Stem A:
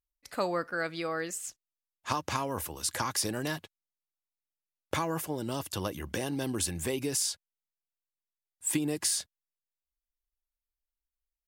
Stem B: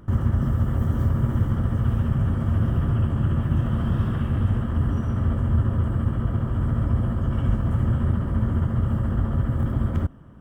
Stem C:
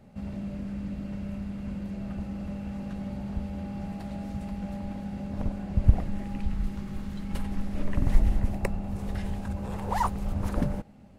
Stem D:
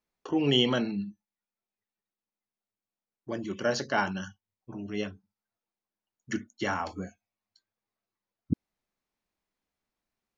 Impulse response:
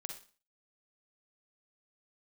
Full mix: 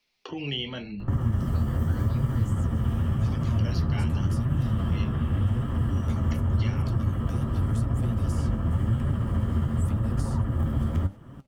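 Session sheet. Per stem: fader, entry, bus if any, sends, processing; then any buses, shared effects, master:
−14.0 dB, 1.15 s, no send, no processing
+0.5 dB, 1.00 s, no send, notch filter 1,500 Hz, Q 16
−16.0 dB, 0.35 s, no send, automatic ducking −15 dB, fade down 1.75 s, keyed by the fourth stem
−11.5 dB, 0.00 s, no send, flat-topped bell 3,400 Hz +13.5 dB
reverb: not used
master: flanger 0.88 Hz, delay 6.7 ms, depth 7.8 ms, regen +53%; multiband upward and downward compressor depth 70%

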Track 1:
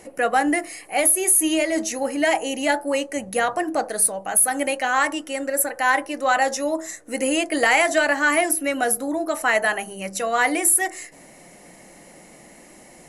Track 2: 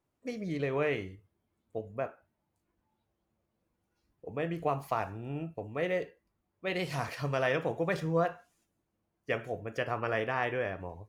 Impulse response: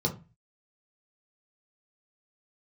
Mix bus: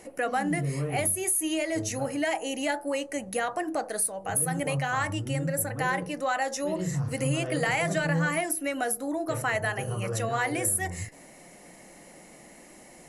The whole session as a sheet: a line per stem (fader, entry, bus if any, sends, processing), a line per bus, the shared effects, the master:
−3.5 dB, 0.00 s, no send, no processing
−9.0 dB, 0.00 s, send −4.5 dB, low-shelf EQ 150 Hz +10.5 dB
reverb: on, RT60 0.30 s, pre-delay 6 ms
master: downward compressor 2 to 1, threshold −28 dBFS, peak gain reduction 7.5 dB

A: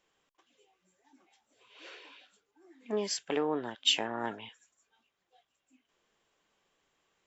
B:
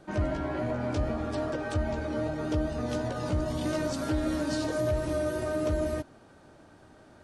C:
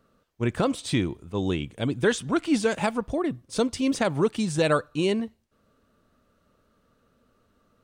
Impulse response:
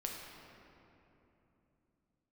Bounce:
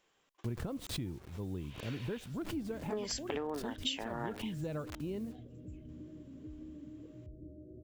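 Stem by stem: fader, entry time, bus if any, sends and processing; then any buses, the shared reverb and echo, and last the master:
+1.5 dB, 0.00 s, no send, no processing
−14.0 dB, 2.35 s, no send, downward compressor, threshold −29 dBFS, peak gain reduction 6.5 dB; inverse Chebyshev low-pass filter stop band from 860 Hz, stop band 40 dB
−7.5 dB, 0.05 s, no send, spectral tilt −3.5 dB per octave; bit reduction 7 bits; background raised ahead of every attack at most 100 dB per second; automatic ducking −12 dB, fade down 0.95 s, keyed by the first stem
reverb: not used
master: downward compressor 6 to 1, threshold −34 dBFS, peak gain reduction 13.5 dB

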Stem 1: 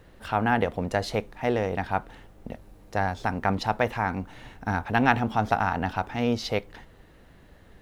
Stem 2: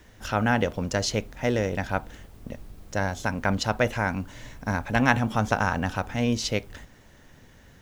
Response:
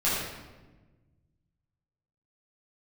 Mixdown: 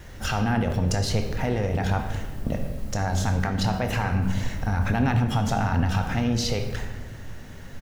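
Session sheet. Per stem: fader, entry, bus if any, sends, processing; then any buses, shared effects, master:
−2.5 dB, 0.00 s, send −17.5 dB, bass and treble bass +10 dB, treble +8 dB; brickwall limiter −13.5 dBFS, peak gain reduction 8.5 dB; pitch vibrato 1.6 Hz 25 cents
−3.0 dB, 0.6 ms, send −12 dB, compressor whose output falls as the input rises −35 dBFS, ratio −1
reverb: on, RT60 1.2 s, pre-delay 8 ms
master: notch filter 3,500 Hz, Q 27

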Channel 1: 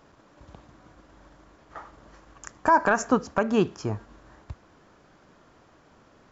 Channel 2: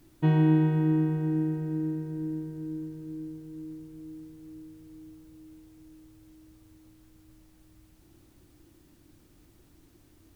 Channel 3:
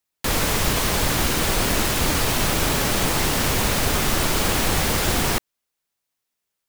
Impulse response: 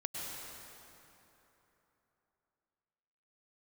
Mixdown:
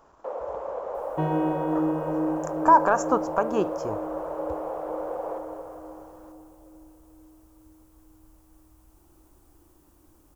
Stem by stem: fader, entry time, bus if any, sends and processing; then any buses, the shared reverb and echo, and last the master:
+0.5 dB, 0.00 s, no send, no processing
0.0 dB, 0.95 s, send −4 dB, no processing
−8.0 dB, 0.00 s, send −9 dB, high-pass with resonance 530 Hz, resonance Q 5.7; low-pass filter 1,000 Hz 12 dB per octave; automatic ducking −12 dB, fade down 0.40 s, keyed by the first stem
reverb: on, RT60 3.4 s, pre-delay 93 ms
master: octave-band graphic EQ 125/250/1,000/2,000/4,000 Hz −11/−6/+6/−9/−9 dB

